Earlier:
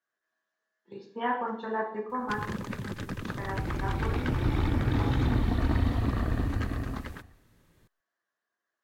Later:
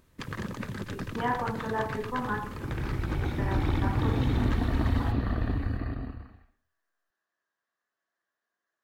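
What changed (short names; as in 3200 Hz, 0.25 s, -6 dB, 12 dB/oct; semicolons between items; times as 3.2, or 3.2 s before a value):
first sound: entry -2.10 s; second sound: entry -0.90 s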